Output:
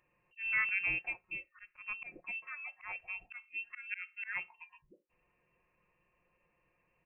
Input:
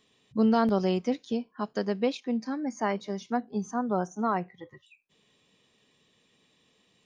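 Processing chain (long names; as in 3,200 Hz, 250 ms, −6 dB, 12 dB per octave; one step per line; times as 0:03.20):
low-shelf EQ 480 Hz −11 dB
comb filter 5.5 ms, depth 57%
volume swells 178 ms
voice inversion scrambler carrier 2,900 Hz
level −4.5 dB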